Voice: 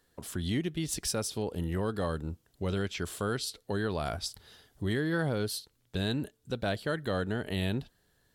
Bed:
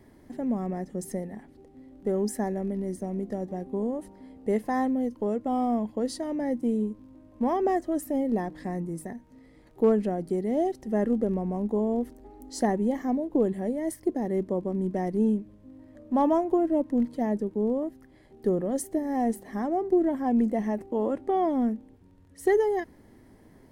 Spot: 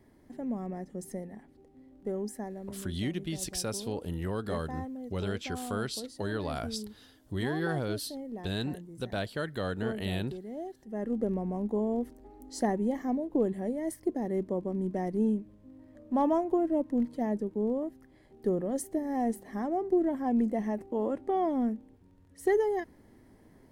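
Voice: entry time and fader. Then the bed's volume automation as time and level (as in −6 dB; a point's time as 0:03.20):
2.50 s, −2.0 dB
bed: 0:02.00 −6 dB
0:02.90 −13.5 dB
0:10.83 −13.5 dB
0:11.24 −3.5 dB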